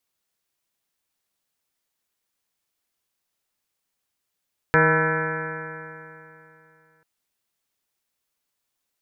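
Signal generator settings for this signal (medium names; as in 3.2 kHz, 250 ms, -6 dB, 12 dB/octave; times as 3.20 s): stretched partials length 2.29 s, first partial 157 Hz, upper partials -6/2/-7.5/-9/-2.5/-19/-0.5/0/2/-11/-12/-12.5 dB, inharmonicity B 0.002, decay 2.88 s, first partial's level -21 dB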